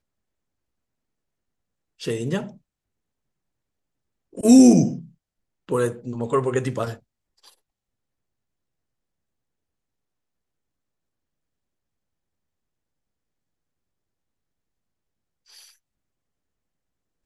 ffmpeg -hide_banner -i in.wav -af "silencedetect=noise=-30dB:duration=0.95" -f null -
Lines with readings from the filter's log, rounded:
silence_start: 0.00
silence_end: 2.02 | silence_duration: 2.02
silence_start: 2.47
silence_end: 4.37 | silence_duration: 1.90
silence_start: 6.94
silence_end: 17.25 | silence_duration: 10.31